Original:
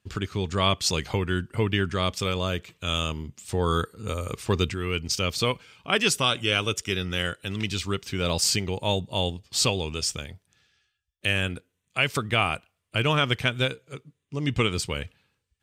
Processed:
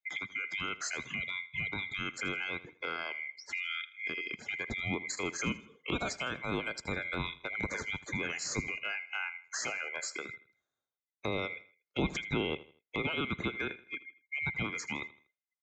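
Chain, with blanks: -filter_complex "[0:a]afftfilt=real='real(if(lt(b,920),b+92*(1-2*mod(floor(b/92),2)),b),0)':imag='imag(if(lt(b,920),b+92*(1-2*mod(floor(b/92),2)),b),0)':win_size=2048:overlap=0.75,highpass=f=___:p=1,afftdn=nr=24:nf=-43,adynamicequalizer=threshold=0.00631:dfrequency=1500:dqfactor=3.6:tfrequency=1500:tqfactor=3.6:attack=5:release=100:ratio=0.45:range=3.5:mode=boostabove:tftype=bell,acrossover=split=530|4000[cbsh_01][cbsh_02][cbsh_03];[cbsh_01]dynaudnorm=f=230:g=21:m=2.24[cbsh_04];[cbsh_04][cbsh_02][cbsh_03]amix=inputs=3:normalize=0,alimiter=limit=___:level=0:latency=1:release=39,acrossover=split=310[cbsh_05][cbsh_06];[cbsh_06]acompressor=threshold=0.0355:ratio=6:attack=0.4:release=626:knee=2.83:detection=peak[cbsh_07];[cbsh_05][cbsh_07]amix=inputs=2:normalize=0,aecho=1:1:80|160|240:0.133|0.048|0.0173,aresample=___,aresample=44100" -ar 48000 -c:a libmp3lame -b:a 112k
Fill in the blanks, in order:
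64, 0.224, 16000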